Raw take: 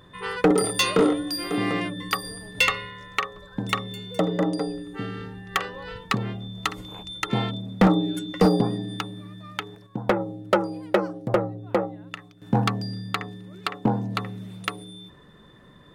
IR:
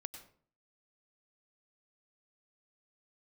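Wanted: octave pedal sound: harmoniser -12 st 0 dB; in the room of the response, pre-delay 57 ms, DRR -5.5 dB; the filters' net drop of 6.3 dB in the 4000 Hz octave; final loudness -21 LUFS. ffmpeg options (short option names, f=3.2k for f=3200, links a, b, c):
-filter_complex "[0:a]equalizer=f=4k:t=o:g=-8,asplit=2[a][b];[1:a]atrim=start_sample=2205,adelay=57[c];[b][c]afir=irnorm=-1:irlink=0,volume=9dB[d];[a][d]amix=inputs=2:normalize=0,asplit=2[e][f];[f]asetrate=22050,aresample=44100,atempo=2,volume=0dB[g];[e][g]amix=inputs=2:normalize=0,volume=-4dB"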